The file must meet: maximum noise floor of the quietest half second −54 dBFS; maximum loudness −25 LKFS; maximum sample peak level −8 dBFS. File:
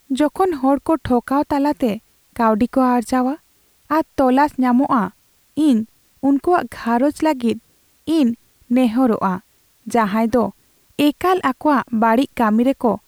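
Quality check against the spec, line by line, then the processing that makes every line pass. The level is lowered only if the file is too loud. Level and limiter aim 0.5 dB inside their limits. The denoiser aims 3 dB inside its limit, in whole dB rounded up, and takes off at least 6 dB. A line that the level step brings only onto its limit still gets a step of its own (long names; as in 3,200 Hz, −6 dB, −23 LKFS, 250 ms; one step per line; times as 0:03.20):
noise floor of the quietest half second −57 dBFS: in spec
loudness −18.0 LKFS: out of spec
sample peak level −5.5 dBFS: out of spec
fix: level −7.5 dB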